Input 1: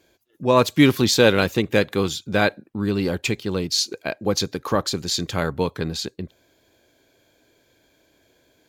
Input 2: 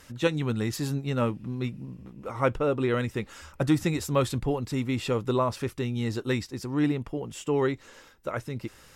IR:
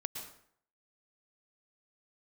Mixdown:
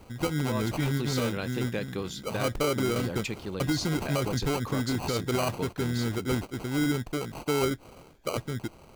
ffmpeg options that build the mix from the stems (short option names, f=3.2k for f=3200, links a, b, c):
-filter_complex "[0:a]acompressor=threshold=-18dB:ratio=6,volume=-10dB[a];[1:a]acrusher=samples=25:mix=1:aa=0.000001,volume=1dB[b];[a][b]amix=inputs=2:normalize=0,alimiter=limit=-19dB:level=0:latency=1:release=51"